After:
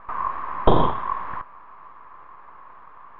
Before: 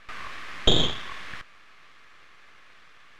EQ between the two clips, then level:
low-pass with resonance 1,000 Hz, resonance Q 7.6
+4.5 dB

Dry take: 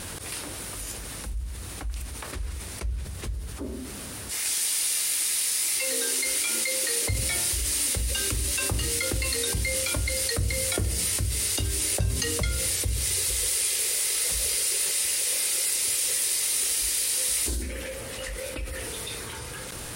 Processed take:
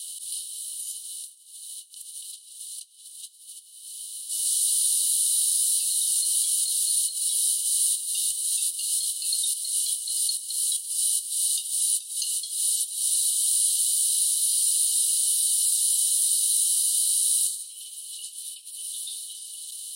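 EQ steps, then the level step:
Chebyshev high-pass with heavy ripple 2,900 Hz, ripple 9 dB
+5.0 dB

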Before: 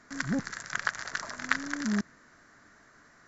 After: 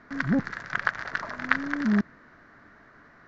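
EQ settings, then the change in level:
high-frequency loss of the air 300 metres
+6.5 dB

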